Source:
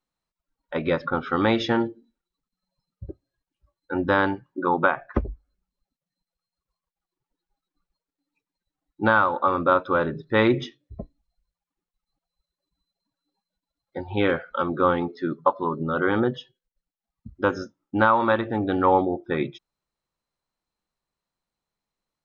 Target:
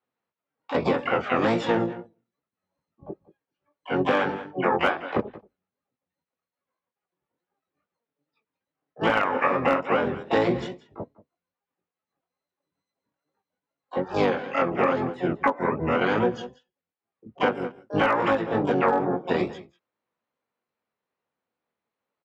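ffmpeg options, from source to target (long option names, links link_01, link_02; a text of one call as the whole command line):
ffmpeg -i in.wav -filter_complex "[0:a]highpass=frequency=170:width=0.5412,highpass=frequency=170:width=1.3066,equalizer=frequency=190:width_type=q:width=4:gain=-4,equalizer=frequency=290:width_type=q:width=4:gain=-3,equalizer=frequency=480:width_type=q:width=4:gain=6,lowpass=frequency=2900:width=0.5412,lowpass=frequency=2900:width=1.3066,aecho=1:1:186:0.1,flanger=delay=18.5:depth=4.3:speed=2.4,asplit=4[link_01][link_02][link_03][link_04];[link_02]asetrate=22050,aresample=44100,atempo=2,volume=-6dB[link_05];[link_03]asetrate=66075,aresample=44100,atempo=0.66742,volume=-8dB[link_06];[link_04]asetrate=88200,aresample=44100,atempo=0.5,volume=-11dB[link_07];[link_01][link_05][link_06][link_07]amix=inputs=4:normalize=0,aeval=exprs='clip(val(0),-1,0.299)':channel_layout=same,acompressor=threshold=-23dB:ratio=6,volume=4.5dB" out.wav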